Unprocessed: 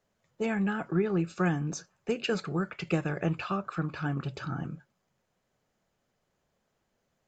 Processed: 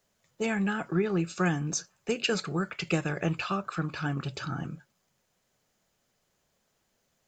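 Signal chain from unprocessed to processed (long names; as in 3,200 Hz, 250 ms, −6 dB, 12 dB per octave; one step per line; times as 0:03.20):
high-shelf EQ 2,900 Hz +10.5 dB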